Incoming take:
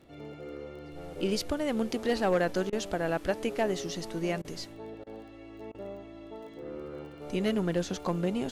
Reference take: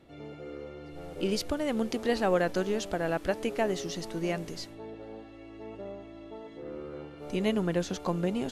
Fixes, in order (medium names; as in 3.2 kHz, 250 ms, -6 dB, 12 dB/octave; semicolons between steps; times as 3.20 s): clip repair -19.5 dBFS; de-click; interpolate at 2.70/4.42/5.04/5.72 s, 25 ms